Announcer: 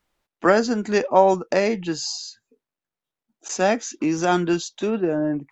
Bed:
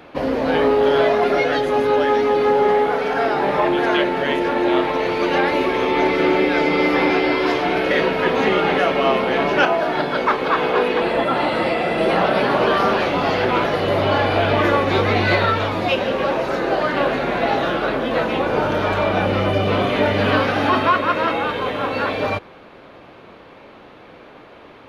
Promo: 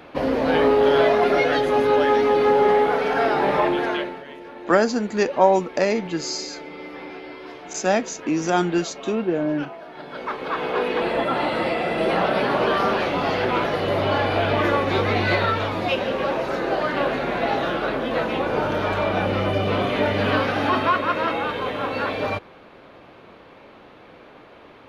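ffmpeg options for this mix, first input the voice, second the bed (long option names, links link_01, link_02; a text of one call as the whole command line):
ffmpeg -i stem1.wav -i stem2.wav -filter_complex "[0:a]adelay=4250,volume=-0.5dB[link_01];[1:a]volume=15dB,afade=type=out:start_time=3.55:duration=0.69:silence=0.11885,afade=type=in:start_time=9.94:duration=1.1:silence=0.158489[link_02];[link_01][link_02]amix=inputs=2:normalize=0" out.wav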